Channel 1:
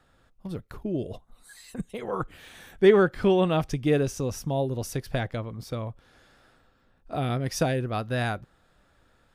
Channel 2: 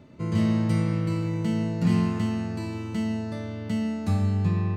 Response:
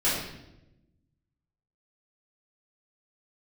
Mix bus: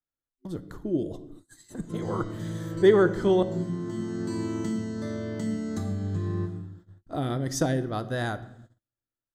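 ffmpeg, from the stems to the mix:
-filter_complex "[0:a]volume=-2.5dB,asplit=3[a][b][c];[a]atrim=end=3.43,asetpts=PTS-STARTPTS,afade=t=out:st=3.426:d=0.004:c=hsin[d];[b]atrim=start=3.43:end=5.94,asetpts=PTS-STARTPTS,volume=0[e];[c]atrim=start=5.94,asetpts=PTS-STARTPTS,afade=t=in:d=0.004:c=hsin[f];[d][e][f]concat=n=3:v=0:a=1,asplit=3[g][h][i];[h]volume=-24dB[j];[1:a]highpass=f=69:p=1,acompressor=threshold=-31dB:ratio=10,adelay=1700,volume=0dB,asplit=2[k][l];[l]volume=-14.5dB[m];[i]apad=whole_len=285249[n];[k][n]sidechaincompress=threshold=-44dB:ratio=8:attack=5:release=454[o];[2:a]atrim=start_sample=2205[p];[j][m]amix=inputs=2:normalize=0[q];[q][p]afir=irnorm=-1:irlink=0[r];[g][o][r]amix=inputs=3:normalize=0,agate=range=-35dB:threshold=-49dB:ratio=16:detection=peak,superequalizer=6b=2.24:12b=0.282:15b=2.24"

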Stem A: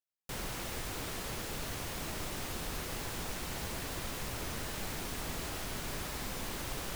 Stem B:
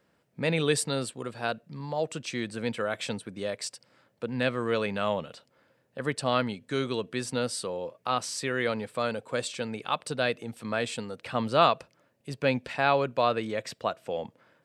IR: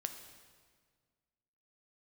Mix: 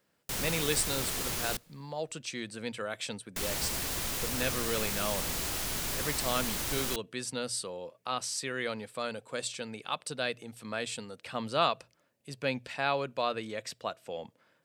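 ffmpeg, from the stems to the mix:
-filter_complex "[0:a]volume=0.5dB,asplit=3[a][b][c];[a]atrim=end=1.57,asetpts=PTS-STARTPTS,afade=t=out:st=1.566:d=0.004:c=hsin[d];[b]atrim=start=1.57:end=3.36,asetpts=PTS-STARTPTS,volume=0[e];[c]atrim=start=3.36,asetpts=PTS-STARTPTS,afade=t=in:d=0.004:c=hsin[f];[d][e][f]concat=n=3:v=0:a=1,asplit=2[g][h];[h]volume=-17.5dB[i];[1:a]bandreject=f=60:t=h:w=6,bandreject=f=120:t=h:w=6,volume=-7dB[j];[2:a]atrim=start_sample=2205[k];[i][k]afir=irnorm=-1:irlink=0[l];[g][j][l]amix=inputs=3:normalize=0,highshelf=f=3k:g=8.5"

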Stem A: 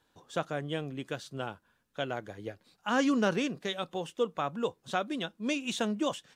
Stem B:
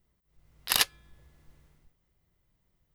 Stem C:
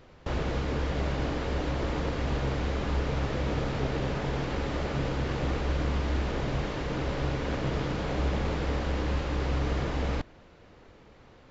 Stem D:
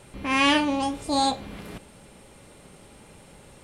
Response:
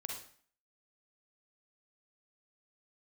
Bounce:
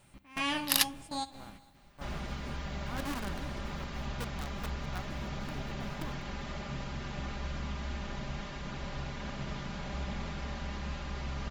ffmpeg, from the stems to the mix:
-filter_complex "[0:a]lowpass=f=1.5k:w=0.5412,lowpass=f=1.5k:w=1.3066,acrusher=bits=5:dc=4:mix=0:aa=0.000001,volume=-10.5dB,asplit=3[a][b][c];[b]volume=-17.5dB[d];[1:a]lowpass=f=3.1k:p=1,aemphasis=mode=production:type=75kf,volume=-5dB[e];[2:a]highshelf=f=5.4k:g=5.5,aecho=1:1:5:0.68,adelay=1750,volume=-8.5dB[f];[3:a]volume=-11.5dB,asplit=2[g][h];[h]volume=-21dB[i];[c]apad=whole_len=160485[j];[g][j]sidechaingate=range=-17dB:threshold=-56dB:ratio=16:detection=peak[k];[d][i]amix=inputs=2:normalize=0,aecho=0:1:198|396|594|792|990|1188:1|0.44|0.194|0.0852|0.0375|0.0165[l];[a][e][f][k][l]amix=inputs=5:normalize=0,equalizer=f=440:w=2.4:g=-11.5"

